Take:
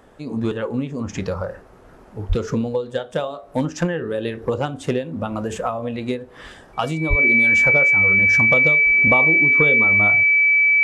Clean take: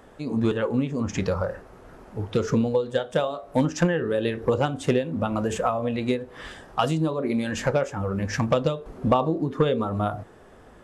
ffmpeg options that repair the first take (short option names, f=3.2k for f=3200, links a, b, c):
-filter_complex "[0:a]bandreject=f=2.3k:w=30,asplit=3[a][b][c];[a]afade=t=out:st=2.28:d=0.02[d];[b]highpass=f=140:w=0.5412,highpass=f=140:w=1.3066,afade=t=in:st=2.28:d=0.02,afade=t=out:st=2.4:d=0.02[e];[c]afade=t=in:st=2.4:d=0.02[f];[d][e][f]amix=inputs=3:normalize=0,asplit=3[g][h][i];[g]afade=t=out:st=7.09:d=0.02[j];[h]highpass=f=140:w=0.5412,highpass=f=140:w=1.3066,afade=t=in:st=7.09:d=0.02,afade=t=out:st=7.21:d=0.02[k];[i]afade=t=in:st=7.21:d=0.02[l];[j][k][l]amix=inputs=3:normalize=0"